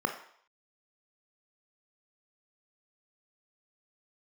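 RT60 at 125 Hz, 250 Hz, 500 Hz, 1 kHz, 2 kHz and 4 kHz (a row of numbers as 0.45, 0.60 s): 0.35, 0.50, 0.60, 0.65, 0.60, 0.65 s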